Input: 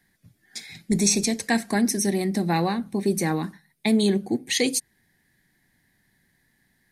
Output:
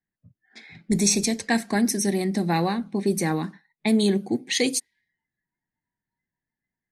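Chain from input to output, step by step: low-pass opened by the level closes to 1600 Hz, open at -19 dBFS; spectral noise reduction 21 dB

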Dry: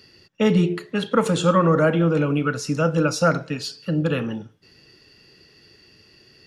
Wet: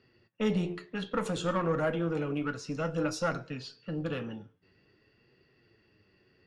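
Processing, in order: one diode to ground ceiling -15 dBFS; flange 0.55 Hz, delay 7.7 ms, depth 3.5 ms, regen +59%; low-pass opened by the level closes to 2100 Hz, open at -21 dBFS; gain -5.5 dB

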